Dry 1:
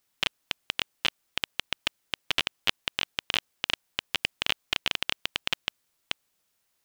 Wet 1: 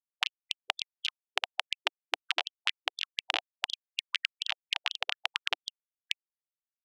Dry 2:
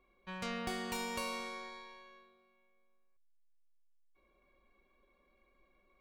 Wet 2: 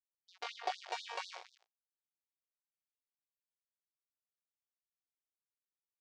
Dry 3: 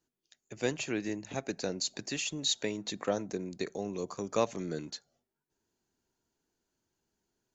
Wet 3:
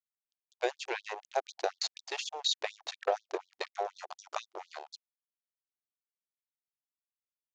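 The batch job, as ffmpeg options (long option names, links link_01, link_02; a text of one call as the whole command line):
ffmpeg -i in.wav -af "aeval=exprs='sgn(val(0))*max(abs(val(0))-0.0133,0)':channel_layout=same,lowpass=frequency=5700:width=0.5412,lowpass=frequency=5700:width=1.3066,equalizer=frequency=750:width=2.3:gain=12,acompressor=threshold=-30dB:ratio=6,afftfilt=real='re*gte(b*sr/1024,320*pow(3500/320,0.5+0.5*sin(2*PI*4.1*pts/sr)))':imag='im*gte(b*sr/1024,320*pow(3500/320,0.5+0.5*sin(2*PI*4.1*pts/sr)))':win_size=1024:overlap=0.75,volume=5.5dB" out.wav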